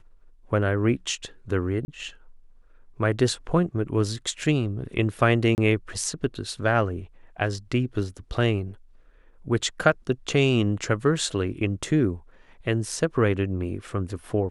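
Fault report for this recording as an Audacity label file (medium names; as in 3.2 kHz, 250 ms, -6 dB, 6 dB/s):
1.850000	1.880000	dropout 30 ms
5.550000	5.580000	dropout 29 ms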